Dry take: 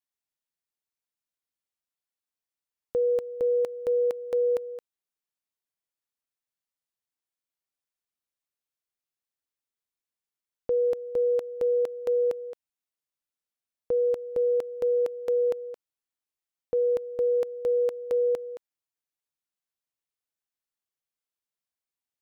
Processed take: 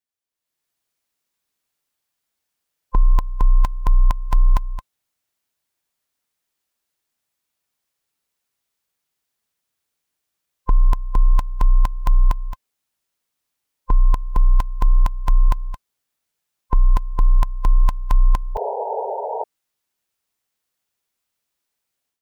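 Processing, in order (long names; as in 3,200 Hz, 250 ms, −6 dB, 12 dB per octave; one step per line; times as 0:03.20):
frequency inversion band by band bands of 500 Hz
automatic gain control gain up to 13 dB
sound drawn into the spectrogram noise, 0:18.55–0:19.44, 390–970 Hz −25 dBFS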